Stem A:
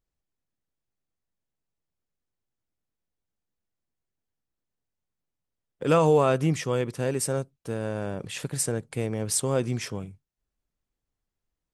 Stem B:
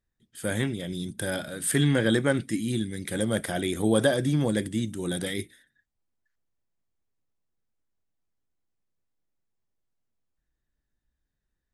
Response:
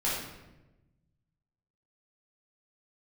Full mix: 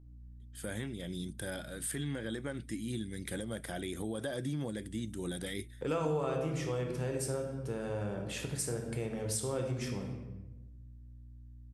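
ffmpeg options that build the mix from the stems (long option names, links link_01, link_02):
-filter_complex "[0:a]aeval=exprs='val(0)+0.00355*(sin(2*PI*60*n/s)+sin(2*PI*2*60*n/s)/2+sin(2*PI*3*60*n/s)/3+sin(2*PI*4*60*n/s)/4+sin(2*PI*5*60*n/s)/5)':channel_layout=same,volume=-8.5dB,asplit=3[link_01][link_02][link_03];[link_01]atrim=end=4.07,asetpts=PTS-STARTPTS,afade=type=out:start_time=4.066:duration=0.004:curve=hsin[link_04];[link_02]atrim=start=4.07:end=4.69,asetpts=PTS-STARTPTS,volume=0[link_05];[link_03]atrim=start=4.69,asetpts=PTS-STARTPTS,afade=type=in:duration=0.004:curve=hsin[link_06];[link_04][link_05][link_06]concat=n=3:v=0:a=1,asplit=3[link_07][link_08][link_09];[link_08]volume=-7dB[link_10];[1:a]alimiter=limit=-19.5dB:level=0:latency=1:release=339,adelay=200,volume=-3.5dB[link_11];[link_09]apad=whole_len=526363[link_12];[link_11][link_12]sidechaincompress=threshold=-57dB:ratio=8:attack=10:release=390[link_13];[2:a]atrim=start_sample=2205[link_14];[link_10][link_14]afir=irnorm=-1:irlink=0[link_15];[link_07][link_13][link_15]amix=inputs=3:normalize=0,acompressor=threshold=-34dB:ratio=2.5"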